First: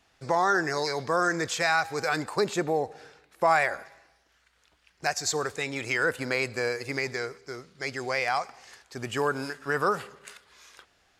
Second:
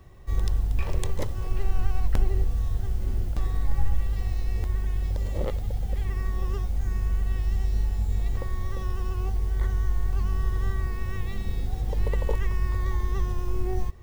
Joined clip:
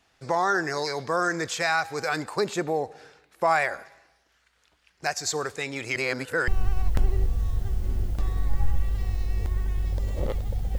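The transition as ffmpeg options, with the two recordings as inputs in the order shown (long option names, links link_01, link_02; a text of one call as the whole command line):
ffmpeg -i cue0.wav -i cue1.wav -filter_complex "[0:a]apad=whole_dur=10.78,atrim=end=10.78,asplit=2[link_01][link_02];[link_01]atrim=end=5.962[link_03];[link_02]atrim=start=5.958:end=6.482,asetpts=PTS-STARTPTS,areverse[link_04];[1:a]atrim=start=1.658:end=5.96[link_05];[link_03][link_04]acrossfade=duration=0.004:curve1=hsin:curve2=hsin[link_06];[link_06][link_05]acrossfade=duration=0.004:curve1=hsin:curve2=hsin" out.wav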